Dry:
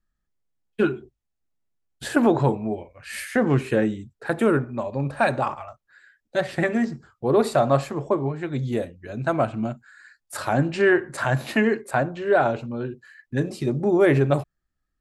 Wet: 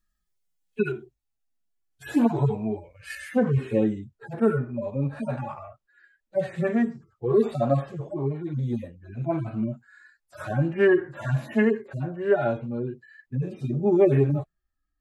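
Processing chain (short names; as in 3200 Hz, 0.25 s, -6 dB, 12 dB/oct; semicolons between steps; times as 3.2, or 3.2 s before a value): median-filter separation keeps harmonic; high shelf 2600 Hz +11 dB, from 0.92 s +4 dB, from 3.15 s -3.5 dB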